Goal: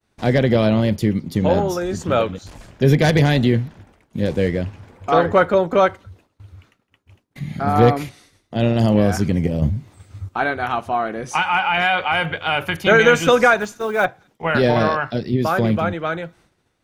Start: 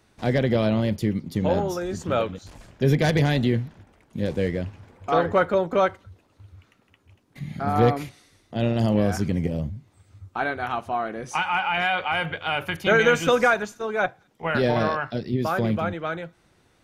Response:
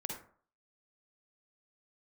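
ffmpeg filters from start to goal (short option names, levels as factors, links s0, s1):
-filter_complex "[0:a]agate=range=0.0224:threshold=0.00251:ratio=3:detection=peak,asettb=1/sr,asplit=3[s0][s1][s2];[s0]atrim=end=9.624[s3];[s1]atrim=start=9.62:end=10.29,asetpts=PTS-STARTPTS,afade=t=in:d=0.004:c=qsin,afade=t=out:st=0.666:d=0.004:c=qsin,acontrast=75[s4];[s2]atrim=start=10.286[s5];[s3][s4]acrossfade=d=0.004:c1=hsin:c2=qsin[s6];[s6][s5]acrossfade=d=0.004:c1=qsin:c2=hsin,asplit=3[s7][s8][s9];[s7]afade=t=out:st=13.59:d=0.02[s10];[s8]acrusher=bits=7:mode=log:mix=0:aa=0.000001,afade=t=in:st=13.59:d=0.02,afade=t=out:st=14.04:d=0.02[s11];[s9]afade=t=in:st=14.04:d=0.02[s12];[s10][s11][s12]amix=inputs=3:normalize=0,volume=1.88"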